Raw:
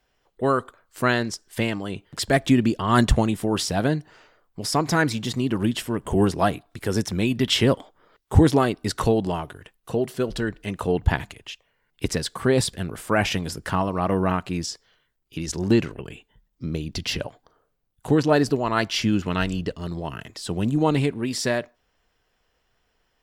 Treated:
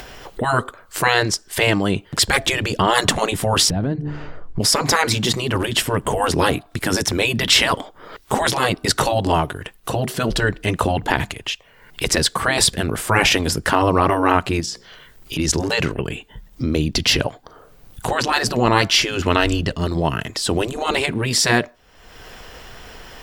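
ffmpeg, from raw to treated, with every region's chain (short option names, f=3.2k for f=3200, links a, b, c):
-filter_complex "[0:a]asettb=1/sr,asplit=3[a][b][c];[a]atrim=end=3.704[d];[b]atrim=start=3.7:end=4.6,asetpts=PTS-STARTPTS,afade=t=in:d=0.004:c=qsin,afade=t=out:st=0.896:d=0.004:c=qsin,aemphasis=mode=reproduction:type=riaa,bandreject=f=73.81:t=h:w=4,bandreject=f=147.62:t=h:w=4,bandreject=f=221.43:t=h:w=4,bandreject=f=295.24:t=h:w=4,bandreject=f=369.05:t=h:w=4,bandreject=f=442.86:t=h:w=4,bandreject=f=516.67:t=h:w=4,acompressor=threshold=-28dB:ratio=8:attack=3.2:release=140:knee=1:detection=peak[e];[c]atrim=start=4.596[f];[d][e]acrossfade=d=0.004:c1=hsin:c2=qsin[g];[g][f]acrossfade=d=0.004:c1=qsin:c2=hsin,asettb=1/sr,asplit=3[h][i][j];[h]atrim=end=14.604[k];[i]atrim=start=14.6:end=15.39,asetpts=PTS-STARTPTS,afade=t=in:d=0.004:c=qsin,afade=t=out:st=0.786:d=0.004:c=qsin,bandreject=f=60:t=h:w=6,bandreject=f=120:t=h:w=6,bandreject=f=180:t=h:w=6,bandreject=f=240:t=h:w=6,bandreject=f=300:t=h:w=6,bandreject=f=360:t=h:w=6,bandreject=f=420:t=h:w=6,bandreject=f=480:t=h:w=6,bandreject=f=540:t=h:w=6,acompressor=threshold=-37dB:ratio=3:attack=3.2:release=140:knee=1:detection=peak[l];[j]atrim=start=15.386[m];[k][l]acrossfade=d=0.004:c1=hsin:c2=qsin[n];[n][m]acrossfade=d=0.004:c1=qsin:c2=hsin,afftfilt=real='re*lt(hypot(re,im),0.316)':imag='im*lt(hypot(re,im),0.316)':win_size=1024:overlap=0.75,acompressor=mode=upward:threshold=-33dB:ratio=2.5,alimiter=level_in=12.5dB:limit=-1dB:release=50:level=0:latency=1,volume=-1dB"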